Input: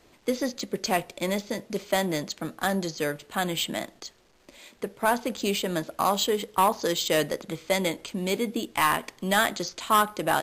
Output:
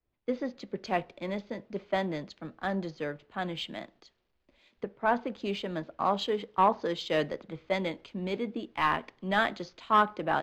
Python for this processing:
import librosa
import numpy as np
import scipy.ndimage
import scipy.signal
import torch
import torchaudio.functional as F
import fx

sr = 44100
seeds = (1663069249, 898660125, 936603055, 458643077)

y = fx.recorder_agc(x, sr, target_db=-18.0, rise_db_per_s=6.3, max_gain_db=30)
y = fx.air_absorb(y, sr, metres=250.0)
y = fx.band_widen(y, sr, depth_pct=70)
y = y * librosa.db_to_amplitude(-4.0)